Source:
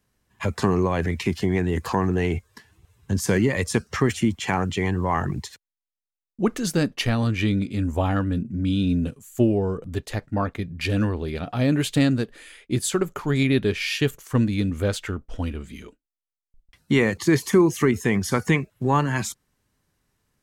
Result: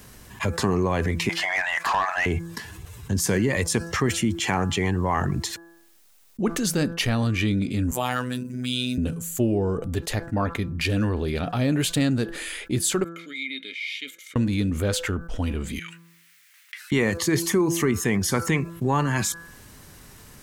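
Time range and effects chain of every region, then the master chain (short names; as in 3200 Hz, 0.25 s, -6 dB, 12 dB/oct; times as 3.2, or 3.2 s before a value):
1.29–2.26 brick-wall FIR high-pass 570 Hz + bell 2000 Hz +4 dB 0.93 oct + overdrive pedal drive 19 dB, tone 1600 Hz, clips at -11.5 dBFS
7.91–8.98 tilt +3.5 dB/oct + robotiser 125 Hz
13.04–14.36 vowel filter i + differentiator + small resonant body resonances 550/1300/2100/3700 Hz, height 16 dB, ringing for 30 ms
15.79–16.92 HPF 1400 Hz 24 dB/oct + compressor, threshold -59 dBFS + bell 2000 Hz +14 dB 1.3 oct
whole clip: high shelf 6200 Hz +4.5 dB; de-hum 168.1 Hz, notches 10; fast leveller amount 50%; gain -5 dB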